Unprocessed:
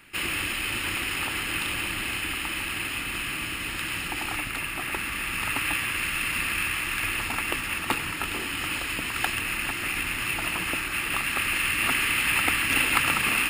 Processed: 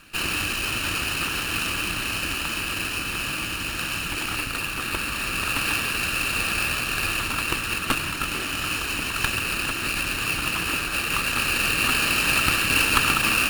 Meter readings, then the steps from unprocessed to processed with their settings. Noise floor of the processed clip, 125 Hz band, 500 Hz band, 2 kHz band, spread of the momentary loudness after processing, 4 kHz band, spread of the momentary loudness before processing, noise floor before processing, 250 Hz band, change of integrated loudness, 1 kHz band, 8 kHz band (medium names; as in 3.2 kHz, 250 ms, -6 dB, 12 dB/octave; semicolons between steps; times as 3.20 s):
-30 dBFS, +5.0 dB, +4.5 dB, +1.5 dB, 7 LU, +4.0 dB, 7 LU, -32 dBFS, +3.5 dB, +2.5 dB, +3.0 dB, +3.5 dB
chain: comb filter that takes the minimum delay 0.72 ms; trim +4 dB